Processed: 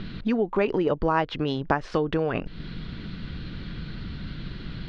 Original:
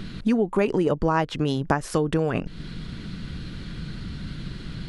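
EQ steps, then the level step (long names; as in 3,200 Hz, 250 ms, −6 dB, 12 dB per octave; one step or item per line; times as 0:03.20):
low-pass filter 4,400 Hz 24 dB per octave
dynamic equaliser 160 Hz, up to −5 dB, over −35 dBFS, Q 0.82
0.0 dB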